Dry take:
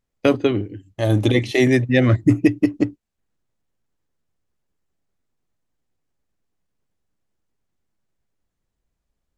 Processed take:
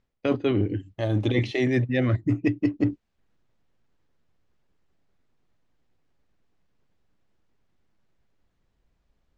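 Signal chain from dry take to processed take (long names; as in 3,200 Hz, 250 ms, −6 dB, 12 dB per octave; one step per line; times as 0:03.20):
reversed playback
downward compressor 16 to 1, threshold −26 dBFS, peak gain reduction 18 dB
reversed playback
low-pass filter 4,500 Hz 12 dB per octave
level +6.5 dB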